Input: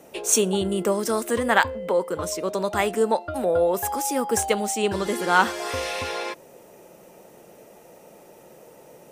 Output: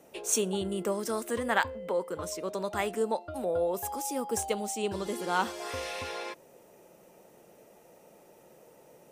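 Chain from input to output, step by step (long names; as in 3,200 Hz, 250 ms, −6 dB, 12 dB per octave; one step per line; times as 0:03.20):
0:03.02–0:05.61: parametric band 1,700 Hz −6 dB 0.85 octaves
level −8 dB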